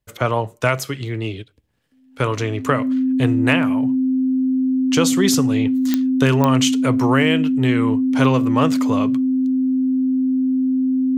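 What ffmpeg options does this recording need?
-af "adeclick=t=4,bandreject=f=260:w=30"

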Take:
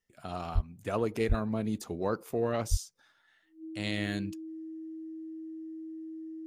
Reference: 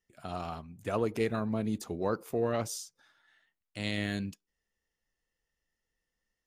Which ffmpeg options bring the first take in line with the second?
-filter_complex "[0:a]bandreject=f=320:w=30,asplit=3[a][b][c];[a]afade=t=out:st=0.54:d=0.02[d];[b]highpass=f=140:w=0.5412,highpass=f=140:w=1.3066,afade=t=in:st=0.54:d=0.02,afade=t=out:st=0.66:d=0.02[e];[c]afade=t=in:st=0.66:d=0.02[f];[d][e][f]amix=inputs=3:normalize=0,asplit=3[g][h][i];[g]afade=t=out:st=1.28:d=0.02[j];[h]highpass=f=140:w=0.5412,highpass=f=140:w=1.3066,afade=t=in:st=1.28:d=0.02,afade=t=out:st=1.4:d=0.02[k];[i]afade=t=in:st=1.4:d=0.02[l];[j][k][l]amix=inputs=3:normalize=0,asplit=3[m][n][o];[m]afade=t=out:st=2.7:d=0.02[p];[n]highpass=f=140:w=0.5412,highpass=f=140:w=1.3066,afade=t=in:st=2.7:d=0.02,afade=t=out:st=2.82:d=0.02[q];[o]afade=t=in:st=2.82:d=0.02[r];[p][q][r]amix=inputs=3:normalize=0"

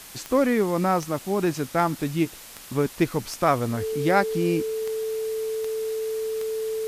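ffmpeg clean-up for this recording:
-af "adeclick=t=4,bandreject=f=440:w=30,afwtdn=0.0079"

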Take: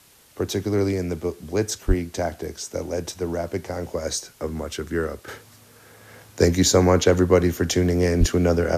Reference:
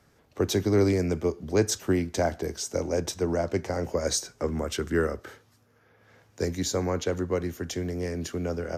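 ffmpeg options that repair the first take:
-filter_complex "[0:a]asplit=3[a][b][c];[a]afade=t=out:st=1.87:d=0.02[d];[b]highpass=f=140:w=0.5412,highpass=f=140:w=1.3066,afade=t=in:st=1.87:d=0.02,afade=t=out:st=1.99:d=0.02[e];[c]afade=t=in:st=1.99:d=0.02[f];[d][e][f]amix=inputs=3:normalize=0,asplit=3[g][h][i];[g]afade=t=out:st=8.19:d=0.02[j];[h]highpass=f=140:w=0.5412,highpass=f=140:w=1.3066,afade=t=in:st=8.19:d=0.02,afade=t=out:st=8.31:d=0.02[k];[i]afade=t=in:st=8.31:d=0.02[l];[j][k][l]amix=inputs=3:normalize=0,agate=range=-21dB:threshold=-42dB,asetnsamples=n=441:p=0,asendcmd='5.28 volume volume -11dB',volume=0dB"

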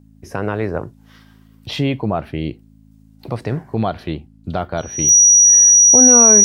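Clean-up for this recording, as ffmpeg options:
-af "adeclick=t=4,bandreject=f=53.7:t=h:w=4,bandreject=f=107.4:t=h:w=4,bandreject=f=161.1:t=h:w=4,bandreject=f=214.8:t=h:w=4,bandreject=f=268.5:t=h:w=4,bandreject=f=5.8k:w=30"

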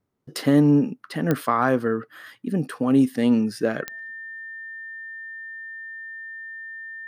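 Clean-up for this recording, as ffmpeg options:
-af "adeclick=t=4,bandreject=f=1.8k:w=30"

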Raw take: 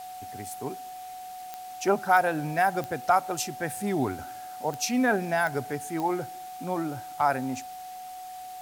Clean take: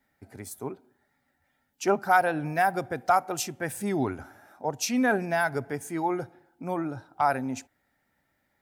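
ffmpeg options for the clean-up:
-af "adeclick=t=4,bandreject=f=740:w=30,afwtdn=0.0032"

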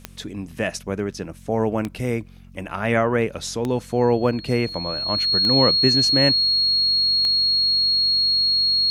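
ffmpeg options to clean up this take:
-af "adeclick=t=4,bandreject=f=45.3:t=h:w=4,bandreject=f=90.6:t=h:w=4,bandreject=f=135.9:t=h:w=4,bandreject=f=181.2:t=h:w=4,bandreject=f=226.5:t=h:w=4,bandreject=f=4.3k:w=30"

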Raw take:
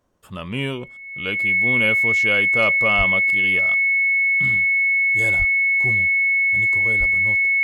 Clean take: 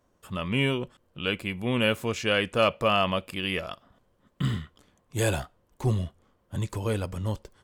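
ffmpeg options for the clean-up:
-filter_complex "[0:a]bandreject=f=2.2k:w=30,asplit=3[a][b][c];[a]afade=t=out:st=2.97:d=0.02[d];[b]highpass=f=140:w=0.5412,highpass=f=140:w=1.3066,afade=t=in:st=2.97:d=0.02,afade=t=out:st=3.09:d=0.02[e];[c]afade=t=in:st=3.09:d=0.02[f];[d][e][f]amix=inputs=3:normalize=0,asplit=3[g][h][i];[g]afade=t=out:st=5.38:d=0.02[j];[h]highpass=f=140:w=0.5412,highpass=f=140:w=1.3066,afade=t=in:st=5.38:d=0.02,afade=t=out:st=5.5:d=0.02[k];[i]afade=t=in:st=5.5:d=0.02[l];[j][k][l]amix=inputs=3:normalize=0,asplit=3[m][n][o];[m]afade=t=out:st=6.99:d=0.02[p];[n]highpass=f=140:w=0.5412,highpass=f=140:w=1.3066,afade=t=in:st=6.99:d=0.02,afade=t=out:st=7.11:d=0.02[q];[o]afade=t=in:st=7.11:d=0.02[r];[p][q][r]amix=inputs=3:normalize=0,asetnsamples=n=441:p=0,asendcmd='3.82 volume volume 5dB',volume=0dB"

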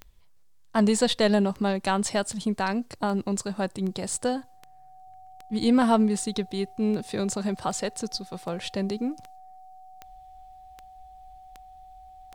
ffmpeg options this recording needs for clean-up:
-af "adeclick=t=4,bandreject=f=750:w=30"

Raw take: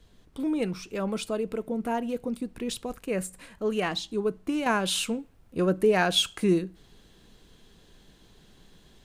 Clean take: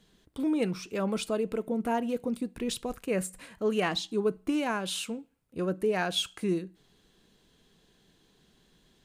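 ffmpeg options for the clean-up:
-af "agate=range=-21dB:threshold=-49dB,asetnsamples=n=441:p=0,asendcmd='4.66 volume volume -6dB',volume=0dB"

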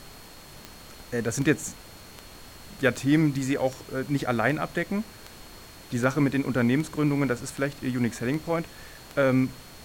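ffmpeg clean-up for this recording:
-af "adeclick=t=4,bandreject=f=4.3k:w=30,afftdn=nr=24:nf=-46"

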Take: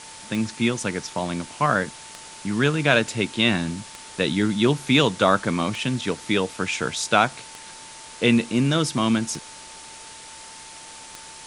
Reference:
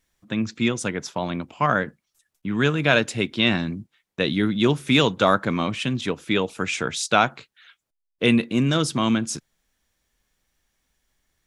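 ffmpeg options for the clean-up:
-af "adeclick=t=4,bandreject=f=890:w=30,afwtdn=0.011"

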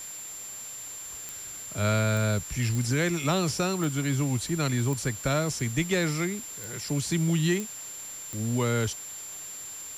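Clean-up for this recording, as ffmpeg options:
-af "adeclick=t=4,bandreject=f=7.3k:w=30,afwtdn=0.0056"

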